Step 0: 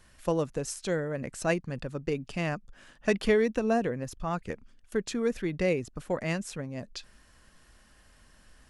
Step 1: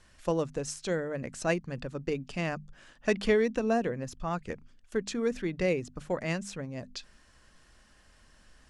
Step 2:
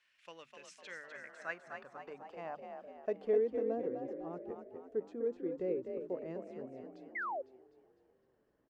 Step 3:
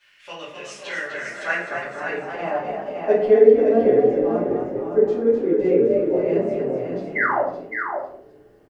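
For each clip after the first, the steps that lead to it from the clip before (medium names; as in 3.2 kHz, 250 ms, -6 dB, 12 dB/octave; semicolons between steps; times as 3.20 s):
Chebyshev low-pass 7.5 kHz, order 2; hum notches 50/100/150/200/250 Hz
frequency-shifting echo 252 ms, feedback 55%, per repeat +43 Hz, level -6 dB; band-pass sweep 2.5 kHz -> 400 Hz, 0.66–3.60 s; painted sound fall, 7.15–7.42 s, 500–2200 Hz -34 dBFS; trim -4 dB
delay 563 ms -6 dB; simulated room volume 82 m³, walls mixed, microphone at 2.5 m; trim +7.5 dB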